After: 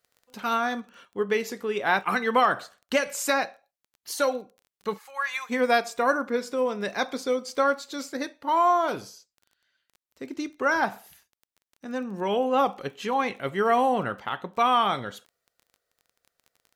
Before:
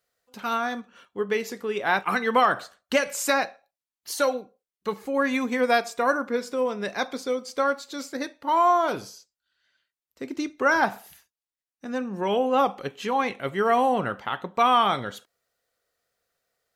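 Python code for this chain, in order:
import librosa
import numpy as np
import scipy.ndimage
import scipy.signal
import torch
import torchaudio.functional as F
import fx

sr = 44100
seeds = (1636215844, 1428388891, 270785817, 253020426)

p1 = fx.highpass(x, sr, hz=920.0, slope=24, at=(4.97, 5.49), fade=0.02)
p2 = fx.rider(p1, sr, range_db=10, speed_s=2.0)
p3 = p1 + (p2 * librosa.db_to_amplitude(1.0))
p4 = fx.dmg_crackle(p3, sr, seeds[0], per_s=17.0, level_db=-34.0)
y = p4 * librosa.db_to_amplitude(-7.5)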